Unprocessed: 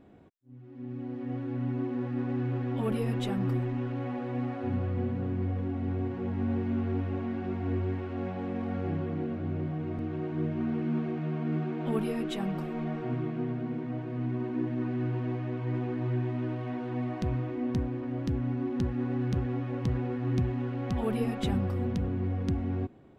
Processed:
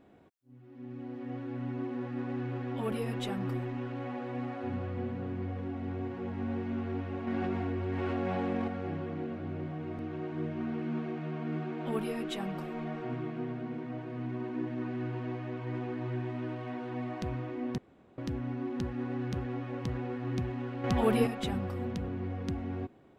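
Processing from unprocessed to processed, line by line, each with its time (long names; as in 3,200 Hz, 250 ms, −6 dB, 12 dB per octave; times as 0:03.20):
0:07.27–0:08.68: envelope flattener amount 100%
0:17.78–0:18.18: fill with room tone
0:20.84–0:21.27: clip gain +7 dB
whole clip: low-shelf EQ 300 Hz −7.5 dB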